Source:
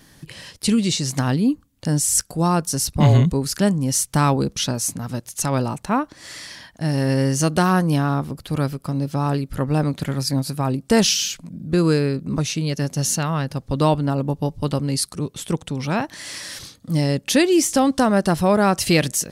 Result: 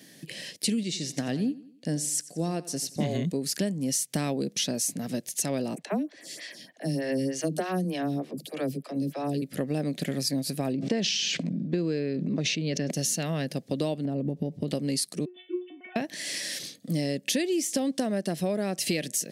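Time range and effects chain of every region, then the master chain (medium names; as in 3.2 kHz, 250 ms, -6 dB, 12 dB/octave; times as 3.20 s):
0.83–3.11 s: treble shelf 12 kHz -11 dB + feedback delay 88 ms, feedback 39%, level -14 dB + upward expansion, over -32 dBFS
5.75–9.42 s: phase dispersion lows, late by 45 ms, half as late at 310 Hz + lamp-driven phase shifter 3.3 Hz
10.73–12.91 s: distance through air 150 m + decay stretcher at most 23 dB/s
14.05–14.68 s: tilt EQ -2.5 dB/octave + compression 5:1, threshold -19 dBFS
15.25–15.96 s: formants replaced by sine waves + inharmonic resonator 360 Hz, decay 0.32 s, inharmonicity 0.002
whole clip: high-pass 170 Hz 24 dB/octave; high-order bell 1.1 kHz -13.5 dB 1 oct; compression, threshold -25 dBFS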